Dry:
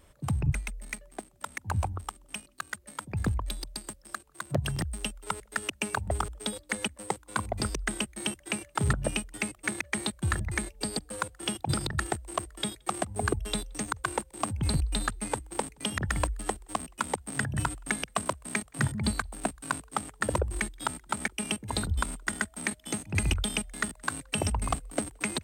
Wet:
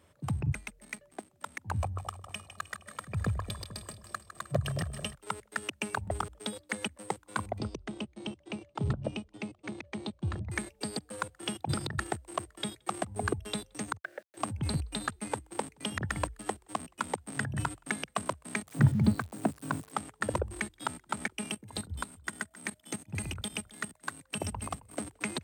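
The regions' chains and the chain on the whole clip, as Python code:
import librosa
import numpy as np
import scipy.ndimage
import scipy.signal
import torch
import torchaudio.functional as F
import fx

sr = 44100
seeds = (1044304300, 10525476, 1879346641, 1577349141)

y = fx.chain(x, sr, fx.comb(ms=1.7, depth=0.5),
    fx.echo_split(split_hz=790.0, low_ms=219, high_ms=155, feedback_pct=52, wet_db=-11), at=(1.8, 5.15))
y = fx.chain(y, sr, fx.lowpass(hz=3800.0, slope=12),
    fx.peak_eq(hz=1700.0, db=-13.5, octaves=1.1), at=(7.58, 10.5))
y = fx.chain(y, sr, fx.double_bandpass(hz=1000.0, octaves=1.5),
    fx.quant_dither(seeds[0], bits=10, dither='none'),
    fx.band_squash(depth_pct=100), at=(13.97, 14.37))
y = fx.chain(y, sr, fx.crossing_spikes(level_db=-27.0),
    fx.highpass(hz=100.0, slope=24),
    fx.tilt_eq(slope=-3.5), at=(18.67, 19.92))
y = fx.chain(y, sr, fx.high_shelf(hz=9100.0, db=8.5),
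    fx.level_steps(step_db=15),
    fx.echo_single(ms=268, db=-18.0), at=(21.49, 25.01))
y = scipy.signal.sosfilt(scipy.signal.butter(4, 75.0, 'highpass', fs=sr, output='sos'), y)
y = fx.high_shelf(y, sr, hz=5500.0, db=-5.0)
y = y * 10.0 ** (-2.5 / 20.0)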